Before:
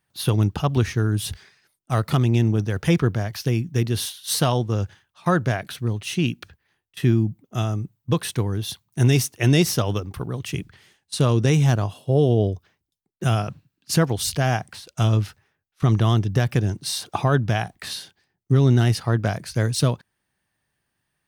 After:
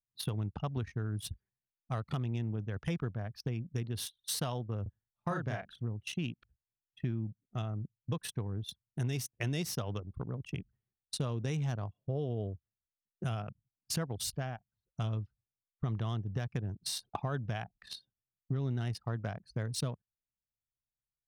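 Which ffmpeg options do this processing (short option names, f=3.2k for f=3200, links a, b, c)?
-filter_complex "[0:a]asettb=1/sr,asplit=3[a][b][c];[a]atrim=end=4.824[d];[b]atrim=start=4.82:end=5.82,asetpts=PTS-STARTPTS,afade=t=in:d=0.004:c=qsin,afade=t=out:st=0.996:d=0.004:c=qsin,asplit=2[e][f];[f]adelay=36,volume=-3dB[g];[e][g]amix=inputs=2:normalize=0,atrim=end_sample=44100[h];[c]atrim=start=5.816[i];[d][h]acrossfade=d=0.004:c1=hsin:c2=qsin[j];[j][i]acrossfade=d=0.004:c1=qsin:c2=hsin,asplit=3[k][l][m];[k]atrim=end=14.61,asetpts=PTS-STARTPTS,afade=t=out:st=14.29:d=0.32:silence=0.211349[n];[l]atrim=start=14.61:end=14.75,asetpts=PTS-STARTPTS,volume=-13.5dB[o];[m]atrim=start=14.75,asetpts=PTS-STARTPTS,afade=t=in:d=0.32:silence=0.211349[p];[n][o][p]concat=n=3:v=0:a=1,equalizer=f=340:w=3.3:g=-4,anlmdn=100,acompressor=threshold=-27dB:ratio=3,volume=-7dB"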